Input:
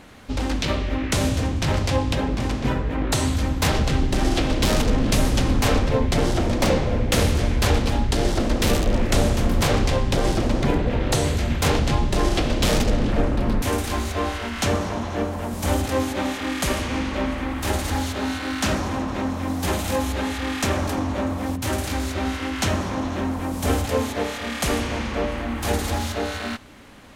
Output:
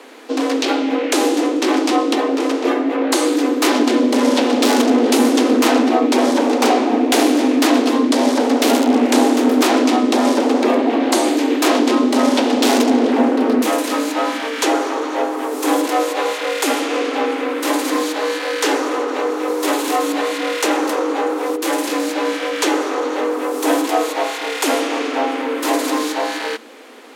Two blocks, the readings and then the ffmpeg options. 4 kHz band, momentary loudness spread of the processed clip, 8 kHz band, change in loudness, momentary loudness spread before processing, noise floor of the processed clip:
+5.5 dB, 7 LU, +5.0 dB, +6.5 dB, 6 LU, −25 dBFS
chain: -af "asoftclip=type=tanh:threshold=-8.5dB,afreqshift=220,volume=5.5dB"

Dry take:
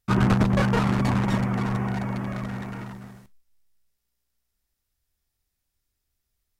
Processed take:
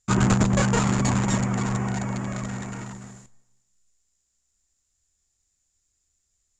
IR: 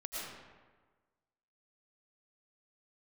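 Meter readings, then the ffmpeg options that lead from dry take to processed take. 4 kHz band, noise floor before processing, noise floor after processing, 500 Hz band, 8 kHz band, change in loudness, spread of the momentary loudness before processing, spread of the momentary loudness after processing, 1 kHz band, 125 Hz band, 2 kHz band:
+2.5 dB, −80 dBFS, −74 dBFS, 0.0 dB, +15.0 dB, +0.5 dB, 15 LU, 15 LU, 0.0 dB, +0.5 dB, +0.5 dB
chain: -filter_complex "[0:a]lowpass=frequency=7100:width_type=q:width=15,asplit=2[link_01][link_02];[1:a]atrim=start_sample=2205,asetrate=61740,aresample=44100,adelay=121[link_03];[link_02][link_03]afir=irnorm=-1:irlink=0,volume=-24.5dB[link_04];[link_01][link_04]amix=inputs=2:normalize=0"

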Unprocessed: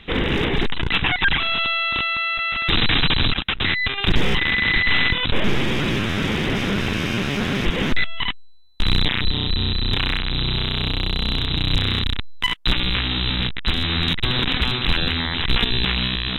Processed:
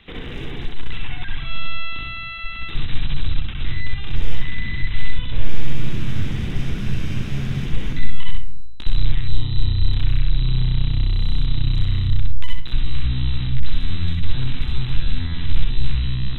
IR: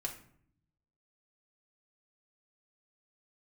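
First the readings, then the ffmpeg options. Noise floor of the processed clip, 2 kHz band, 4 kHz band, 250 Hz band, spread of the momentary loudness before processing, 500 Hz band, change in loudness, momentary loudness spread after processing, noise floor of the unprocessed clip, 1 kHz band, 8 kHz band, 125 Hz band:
−29 dBFS, −13.0 dB, −13.0 dB, −7.0 dB, 5 LU, −13.5 dB, −5.5 dB, 9 LU, −31 dBFS, −13.0 dB, can't be measured, +2.0 dB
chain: -filter_complex "[0:a]acrossover=split=280|4100[link_01][link_02][link_03];[link_01]acompressor=threshold=-28dB:ratio=4[link_04];[link_02]acompressor=threshold=-34dB:ratio=4[link_05];[link_03]acompressor=threshold=-42dB:ratio=4[link_06];[link_04][link_05][link_06]amix=inputs=3:normalize=0,asplit=2[link_07][link_08];[link_08]asubboost=boost=6.5:cutoff=160[link_09];[1:a]atrim=start_sample=2205,adelay=63[link_10];[link_09][link_10]afir=irnorm=-1:irlink=0,volume=-1dB[link_11];[link_07][link_11]amix=inputs=2:normalize=0,volume=-6dB"

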